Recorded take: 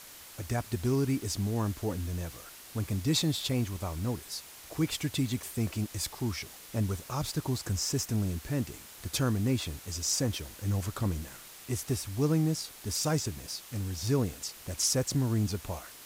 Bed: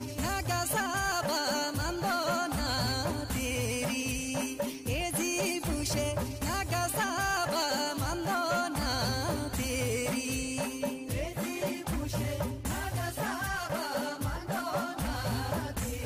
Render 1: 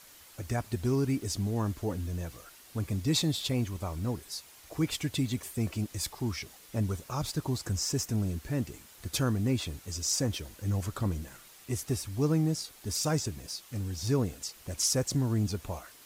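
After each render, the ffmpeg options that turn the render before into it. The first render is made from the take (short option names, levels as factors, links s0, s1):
-af "afftdn=nr=6:nf=-50"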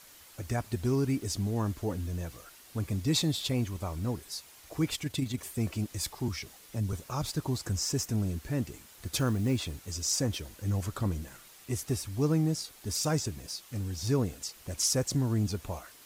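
-filter_complex "[0:a]asettb=1/sr,asplit=3[s0][s1][s2];[s0]atrim=end=4.954[s3];[s1]atrim=start=4.95:end=5.39,asetpts=PTS-STARTPTS,afade=t=in:d=0.004:c=qsin,afade=t=out:st=0.436:d=0.004:c=qsin,tremolo=f=25:d=0.462[s4];[s2]atrim=start=5.386[s5];[s3][s4]acrossfade=d=0.004:c1=hsin:c2=qsin[s6];[s6][s5]acrossfade=d=0.004:c1=qsin:c2=hsin,asettb=1/sr,asplit=3[s7][s8][s9];[s7]atrim=end=6.284[s10];[s8]atrim=start=6.28:end=6.93,asetpts=PTS-STARTPTS,afade=t=in:d=0.004:c=qsin,afade=t=out:st=0.646:d=0.004:c=qsin,acrossover=split=170|3000[s11][s12][s13];[s12]acompressor=threshold=0.01:ratio=2.5:attack=3.2:release=140:knee=2.83:detection=peak[s14];[s11][s14][s13]amix=inputs=3:normalize=0[s15];[s9]atrim=start=6.926[s16];[s10][s15]acrossfade=d=0.004:c1=hsin:c2=qsin[s17];[s17][s16]acrossfade=d=0.004:c1=qsin:c2=hsin,asettb=1/sr,asplit=3[s18][s19][s20];[s18]atrim=end=9.074[s21];[s19]atrim=start=9.07:end=9.91,asetpts=PTS-STARTPTS,afade=t=in:d=0.004:c=qsin,afade=t=out:st=0.836:d=0.004:c=qsin,acrusher=bits=7:mode=log:mix=0:aa=0.000001[s22];[s20]atrim=start=9.906[s23];[s21][s22]acrossfade=d=0.004:c1=hsin:c2=qsin[s24];[s24][s23]acrossfade=d=0.004:c1=qsin:c2=hsin"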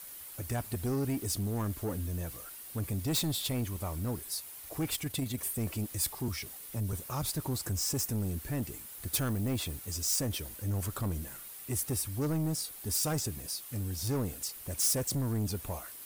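-af "asoftclip=type=tanh:threshold=0.0447,aexciter=amount=2.8:drive=6.9:freq=8700"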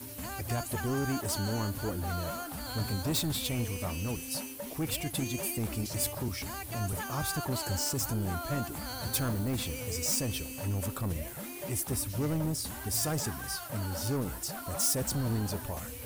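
-filter_complex "[1:a]volume=0.376[s0];[0:a][s0]amix=inputs=2:normalize=0"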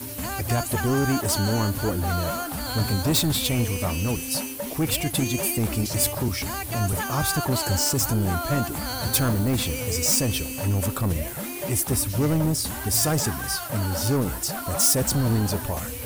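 -af "volume=2.82"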